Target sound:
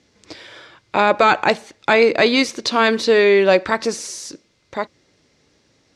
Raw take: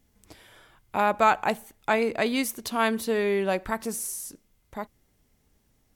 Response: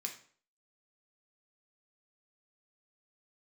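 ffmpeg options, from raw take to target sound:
-af "crystalizer=i=4.5:c=0,apsyclip=15.5dB,highpass=120,equalizer=f=210:t=q:w=4:g=-5,equalizer=f=330:t=q:w=4:g=5,equalizer=f=530:t=q:w=4:g=6,equalizer=f=770:t=q:w=4:g=-3,equalizer=f=3.1k:t=q:w=4:g=-5,lowpass=f=4.8k:w=0.5412,lowpass=f=4.8k:w=1.3066,volume=-6dB"

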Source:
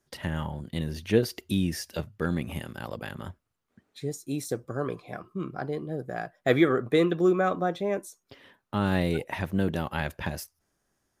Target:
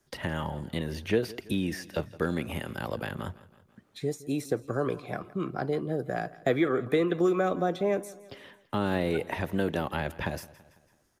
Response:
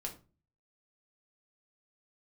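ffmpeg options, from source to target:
-filter_complex "[0:a]acrossover=split=290|620|2700[a][b][c][d];[a]acompressor=threshold=-38dB:ratio=4[e];[b]acompressor=threshold=-30dB:ratio=4[f];[c]acompressor=threshold=-38dB:ratio=4[g];[d]acompressor=threshold=-50dB:ratio=4[h];[e][f][g][h]amix=inputs=4:normalize=0,aecho=1:1:166|332|498|664:0.106|0.054|0.0276|0.0141,volume=4dB"

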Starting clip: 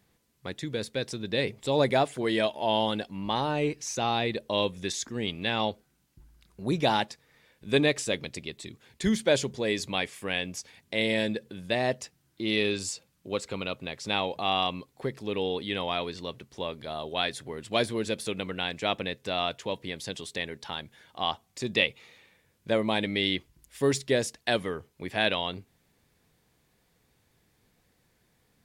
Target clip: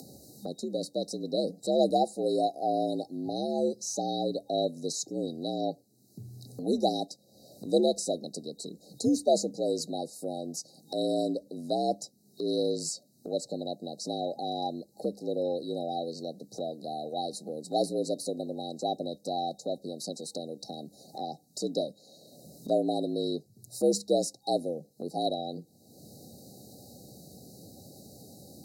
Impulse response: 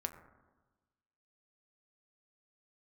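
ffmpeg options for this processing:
-af "afreqshift=68,afftfilt=real='re*(1-between(b*sr/4096,810,3800))':imag='im*(1-between(b*sr/4096,810,3800))':win_size=4096:overlap=0.75,acompressor=mode=upward:threshold=-33dB:ratio=2.5"

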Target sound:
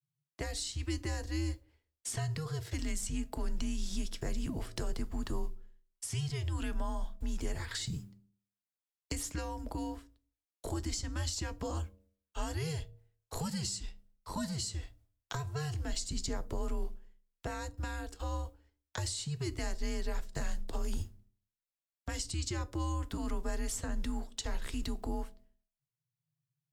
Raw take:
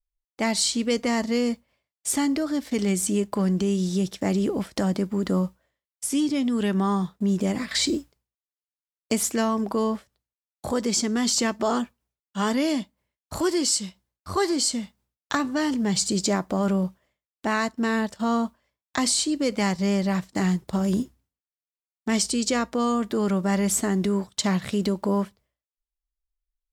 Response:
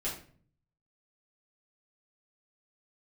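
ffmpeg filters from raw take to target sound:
-filter_complex "[0:a]bandreject=f=90.05:t=h:w=4,bandreject=f=180.1:t=h:w=4,bandreject=f=270.15:t=h:w=4,bandreject=f=360.2:t=h:w=4,bandreject=f=450.25:t=h:w=4,bandreject=f=540.3:t=h:w=4,bandreject=f=630.35:t=h:w=4,bandreject=f=720.4:t=h:w=4,bandreject=f=810.45:t=h:w=4,acrossover=split=190|440|6700[a][b][c][d];[a]acompressor=threshold=-33dB:ratio=4[e];[b]acompressor=threshold=-36dB:ratio=4[f];[c]acompressor=threshold=-36dB:ratio=4[g];[d]acompressor=threshold=-39dB:ratio=4[h];[e][f][g][h]amix=inputs=4:normalize=0,afreqshift=-160,asplit=2[i][j];[1:a]atrim=start_sample=2205,asetrate=74970,aresample=44100[k];[j][k]afir=irnorm=-1:irlink=0,volume=-13dB[l];[i][l]amix=inputs=2:normalize=0,volume=-6dB"

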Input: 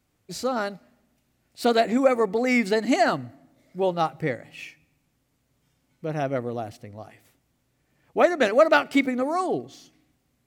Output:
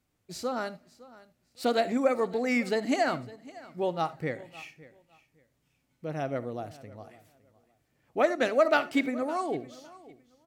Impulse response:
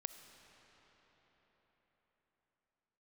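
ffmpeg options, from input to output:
-filter_complex "[0:a]aecho=1:1:559|1118:0.1|0.021[a];[1:a]atrim=start_sample=2205,atrim=end_sample=3969[b];[a][b]afir=irnorm=-1:irlink=0,volume=-2dB"

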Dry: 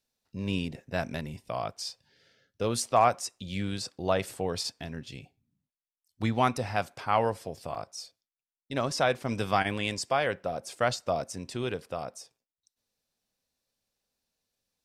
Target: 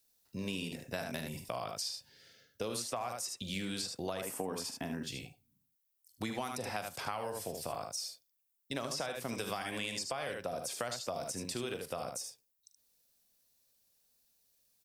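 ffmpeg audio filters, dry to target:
-filter_complex "[0:a]aemphasis=mode=production:type=50fm,aecho=1:1:42|75:0.237|0.422,acrossover=split=170|4500[a][b][c];[a]acompressor=threshold=-49dB:ratio=4[d];[b]acompressor=threshold=-28dB:ratio=4[e];[c]acompressor=threshold=-38dB:ratio=4[f];[d][e][f]amix=inputs=3:normalize=0,asettb=1/sr,asplit=3[g][h][i];[g]atrim=end=4.214[j];[h]atrim=start=4.21:end=5.03,asetpts=PTS-STARTPTS,afade=t=in:d=0.004:c=qsin,afade=t=out:st=0.816:d=0.004:c=qsin,equalizer=f=100:t=o:w=0.67:g=-3,equalizer=f=250:t=o:w=0.67:g=9,equalizer=f=1k:t=o:w=0.67:g=7,equalizer=f=4k:t=o:w=0.67:g=-11[k];[i]atrim=start=5.026[l];[j][k]acrossfade=d=0.004:c1=hsin:c2=qsin[m];[m][l]acrossfade=d=0.004:c1=qsin:c2=hsin,acompressor=threshold=-35dB:ratio=4"

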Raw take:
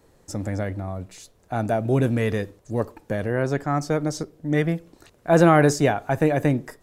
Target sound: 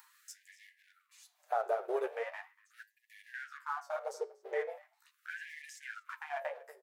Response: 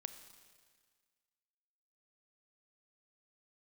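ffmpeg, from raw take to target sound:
-filter_complex "[0:a]aemphasis=mode=production:type=riaa,bandreject=f=50:t=h:w=6,bandreject=f=100:t=h:w=6,bandreject=f=150:t=h:w=6,bandreject=f=200:t=h:w=6,afwtdn=0.0355,bass=f=250:g=11,treble=f=4k:g=-14,acrossover=split=320|1700[a][b][c];[a]acompressor=threshold=-35dB:ratio=4[d];[b]acompressor=threshold=-32dB:ratio=4[e];[c]acompressor=threshold=-44dB:ratio=4[f];[d][e][f]amix=inputs=3:normalize=0,acrossover=split=1600[g][h];[h]alimiter=level_in=16.5dB:limit=-24dB:level=0:latency=1:release=136,volume=-16.5dB[i];[g][i]amix=inputs=2:normalize=0,acompressor=mode=upward:threshold=-38dB:ratio=2.5,flanger=delay=6.5:depth=6.6:regen=13:speed=0.7:shape=sinusoidal,asplit=2[j][k];[k]adelay=239.1,volume=-18dB,highshelf=f=4k:g=-5.38[l];[j][l]amix=inputs=2:normalize=0,asplit=2[m][n];[n]aeval=exprs='sgn(val(0))*max(abs(val(0))-0.00376,0)':c=same,volume=-3.5dB[o];[m][o]amix=inputs=2:normalize=0,flanger=delay=9.3:depth=8.5:regen=-77:speed=0.34:shape=triangular,afftfilt=real='re*gte(b*sr/1024,350*pow(1700/350,0.5+0.5*sin(2*PI*0.4*pts/sr)))':imag='im*gte(b*sr/1024,350*pow(1700/350,0.5+0.5*sin(2*PI*0.4*pts/sr)))':win_size=1024:overlap=0.75,volume=4dB"

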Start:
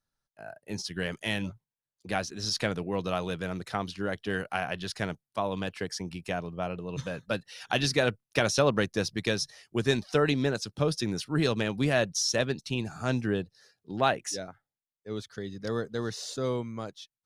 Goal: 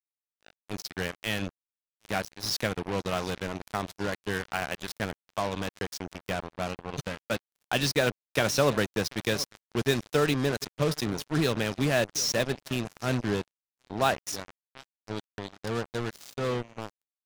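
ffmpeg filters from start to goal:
-filter_complex "[0:a]asplit=2[a][b];[b]aecho=0:1:736|1472|2208|2944:0.126|0.0554|0.0244|0.0107[c];[a][c]amix=inputs=2:normalize=0,acrusher=bits=4:mix=0:aa=0.5"

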